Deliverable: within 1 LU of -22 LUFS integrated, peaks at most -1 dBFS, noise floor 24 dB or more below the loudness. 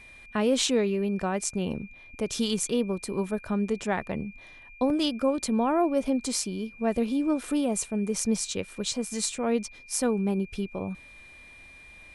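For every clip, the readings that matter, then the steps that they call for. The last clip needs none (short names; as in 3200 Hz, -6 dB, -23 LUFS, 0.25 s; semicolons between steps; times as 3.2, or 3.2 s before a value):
dropouts 1; longest dropout 1.8 ms; steady tone 2400 Hz; tone level -48 dBFS; loudness -28.0 LUFS; peak -10.5 dBFS; loudness target -22.0 LUFS
-> interpolate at 4.9, 1.8 ms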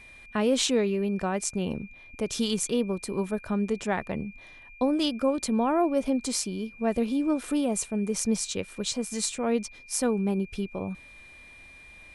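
dropouts 0; steady tone 2400 Hz; tone level -48 dBFS
-> notch 2400 Hz, Q 30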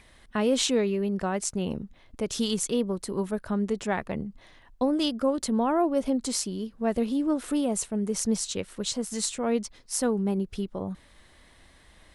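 steady tone none; loudness -28.0 LUFS; peak -10.5 dBFS; loudness target -22.0 LUFS
-> gain +6 dB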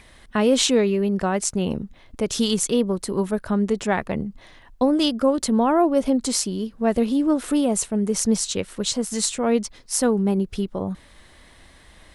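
loudness -22.0 LUFS; peak -4.5 dBFS; noise floor -51 dBFS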